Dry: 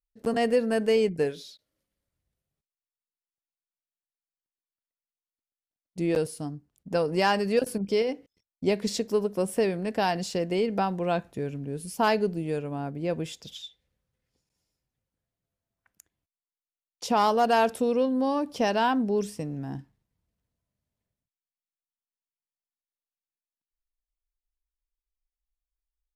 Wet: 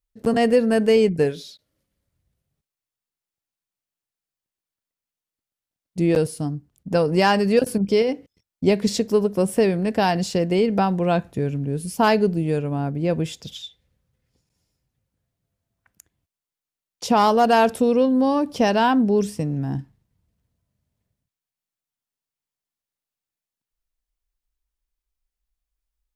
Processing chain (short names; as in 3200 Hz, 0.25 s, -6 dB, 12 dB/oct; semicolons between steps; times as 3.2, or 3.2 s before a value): bell 100 Hz +6.5 dB 2.4 oct; gain +5 dB